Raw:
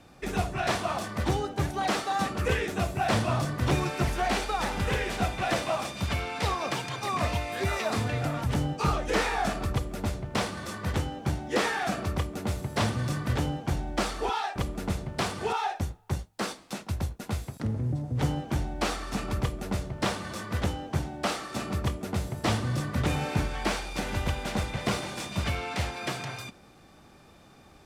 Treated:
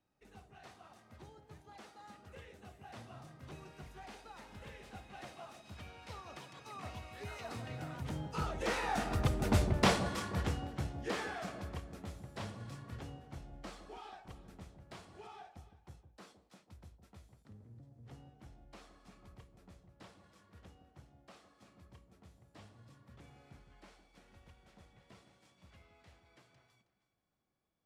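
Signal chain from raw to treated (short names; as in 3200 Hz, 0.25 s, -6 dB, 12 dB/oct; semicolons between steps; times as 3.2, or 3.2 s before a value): Doppler pass-by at 9.68, 18 m/s, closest 5 m; high shelf 11000 Hz -3 dB; echo with dull and thin repeats by turns 0.159 s, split 860 Hz, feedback 54%, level -10 dB; gain +2.5 dB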